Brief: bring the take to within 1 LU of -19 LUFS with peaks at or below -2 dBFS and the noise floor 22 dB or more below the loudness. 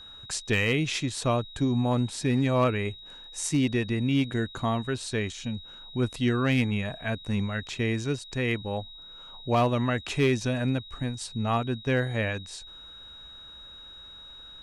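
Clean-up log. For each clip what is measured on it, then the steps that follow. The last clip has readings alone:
clipped 0.3%; flat tops at -16.5 dBFS; steady tone 3800 Hz; tone level -44 dBFS; loudness -28.0 LUFS; peak -16.5 dBFS; loudness target -19.0 LUFS
-> clip repair -16.5 dBFS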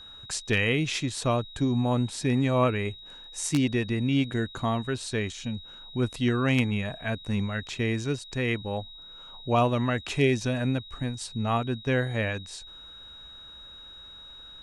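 clipped 0.0%; steady tone 3800 Hz; tone level -44 dBFS
-> notch 3800 Hz, Q 30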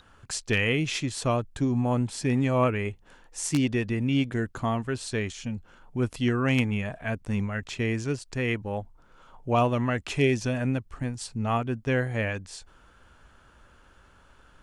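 steady tone none; loudness -28.0 LUFS; peak -8.0 dBFS; loudness target -19.0 LUFS
-> gain +9 dB; limiter -2 dBFS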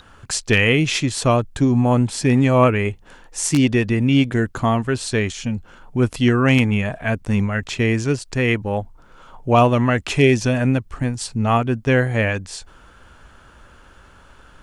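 loudness -19.0 LUFS; peak -2.0 dBFS; noise floor -48 dBFS

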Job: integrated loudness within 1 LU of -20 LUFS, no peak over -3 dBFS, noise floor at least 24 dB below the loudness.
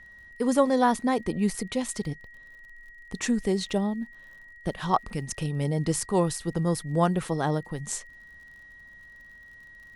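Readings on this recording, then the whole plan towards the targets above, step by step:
ticks 52/s; steady tone 1900 Hz; tone level -47 dBFS; loudness -27.5 LUFS; peak -8.5 dBFS; loudness target -20.0 LUFS
-> de-click; notch 1900 Hz, Q 30; gain +7.5 dB; limiter -3 dBFS

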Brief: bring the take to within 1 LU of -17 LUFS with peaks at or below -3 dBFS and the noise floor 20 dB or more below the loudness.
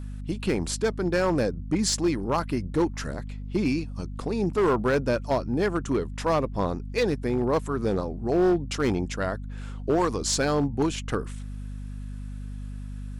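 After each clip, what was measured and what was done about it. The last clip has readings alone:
clipped 1.3%; flat tops at -17.0 dBFS; hum 50 Hz; harmonics up to 250 Hz; hum level -33 dBFS; loudness -26.5 LUFS; peak -17.0 dBFS; loudness target -17.0 LUFS
-> clip repair -17 dBFS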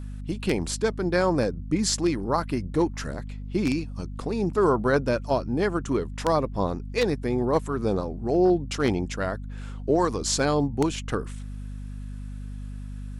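clipped 0.0%; hum 50 Hz; harmonics up to 250 Hz; hum level -33 dBFS
-> notches 50/100/150/200/250 Hz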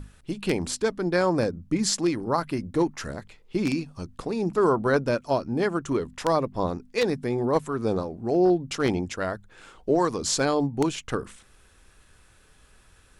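hum none; loudness -26.0 LUFS; peak -8.0 dBFS; loudness target -17.0 LUFS
-> gain +9 dB; limiter -3 dBFS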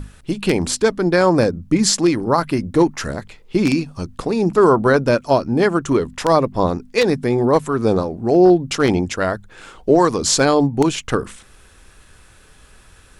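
loudness -17.5 LUFS; peak -3.0 dBFS; noise floor -48 dBFS

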